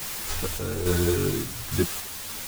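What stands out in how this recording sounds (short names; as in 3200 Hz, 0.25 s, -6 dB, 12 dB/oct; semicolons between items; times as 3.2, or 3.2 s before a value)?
a quantiser's noise floor 6-bit, dither triangular; random-step tremolo; a shimmering, thickened sound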